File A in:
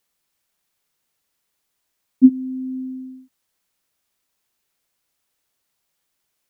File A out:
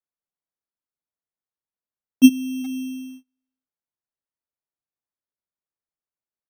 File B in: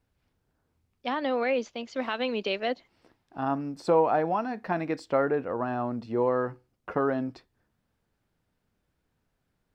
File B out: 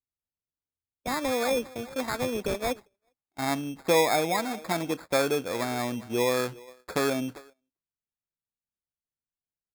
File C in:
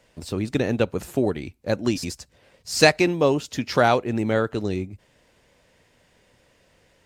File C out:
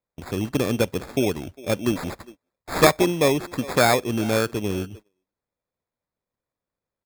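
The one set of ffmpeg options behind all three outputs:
-filter_complex "[0:a]asplit=2[s0][s1];[s1]adelay=400,highpass=300,lowpass=3400,asoftclip=type=hard:threshold=0.355,volume=0.126[s2];[s0][s2]amix=inputs=2:normalize=0,acrusher=samples=15:mix=1:aa=0.000001,agate=range=0.0355:threshold=0.00891:ratio=16:detection=peak"

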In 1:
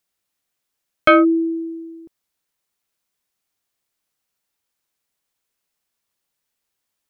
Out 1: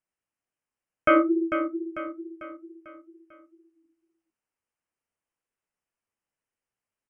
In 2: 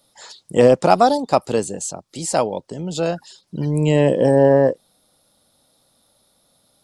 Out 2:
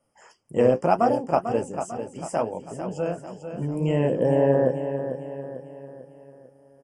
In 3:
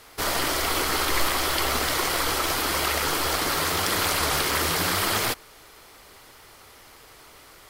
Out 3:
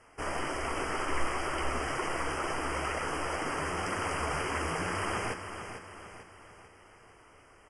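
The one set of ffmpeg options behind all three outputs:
-af "equalizer=f=6300:w=0.62:g=-10.5,flanger=delay=7.6:depth=9.4:regen=-42:speed=2:shape=sinusoidal,aecho=1:1:446|892|1338|1784|2230:0.355|0.167|0.0784|0.0368|0.0173,aresample=22050,aresample=44100,asuperstop=centerf=3900:order=12:qfactor=2.4,volume=0.75"

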